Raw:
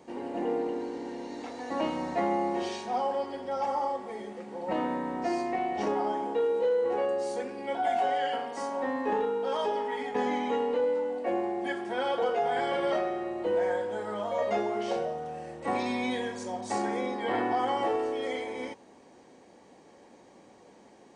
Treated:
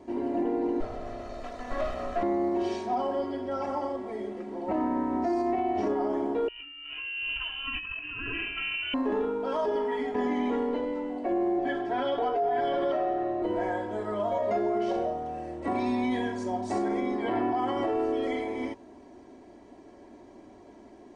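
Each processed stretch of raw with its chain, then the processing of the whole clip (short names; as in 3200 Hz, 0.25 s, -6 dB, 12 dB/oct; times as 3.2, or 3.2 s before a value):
0.8–2.23 minimum comb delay 1.6 ms + bell 65 Hz -13 dB 1.8 oct
6.48–8.94 negative-ratio compressor -33 dBFS + inverted band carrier 3300 Hz
11.58–13.42 LPF 5500 Hz + comb 6.9 ms, depth 68%
whole clip: tilt -2.5 dB/oct; comb 3 ms, depth 70%; limiter -20 dBFS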